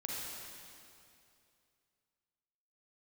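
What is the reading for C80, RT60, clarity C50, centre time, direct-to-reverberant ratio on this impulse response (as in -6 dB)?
-1.0 dB, 2.6 s, -3.0 dB, 0.158 s, -4.0 dB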